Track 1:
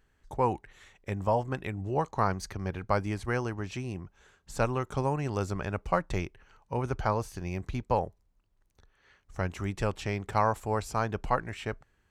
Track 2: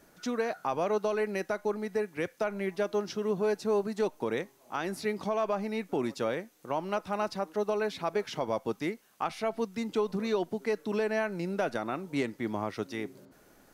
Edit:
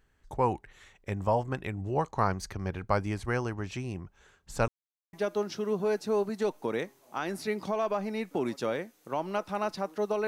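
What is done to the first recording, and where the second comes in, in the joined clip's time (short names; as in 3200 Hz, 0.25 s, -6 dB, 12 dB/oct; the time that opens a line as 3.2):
track 1
4.68–5.13 mute
5.13 switch to track 2 from 2.71 s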